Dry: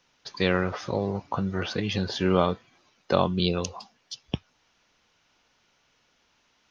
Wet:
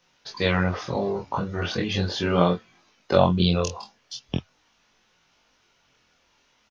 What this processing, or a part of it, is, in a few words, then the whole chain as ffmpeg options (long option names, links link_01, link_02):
double-tracked vocal: -filter_complex "[0:a]asplit=2[link_01][link_02];[link_02]adelay=23,volume=-4dB[link_03];[link_01][link_03]amix=inputs=2:normalize=0,flanger=delay=17.5:depth=7.7:speed=0.39,volume=4dB"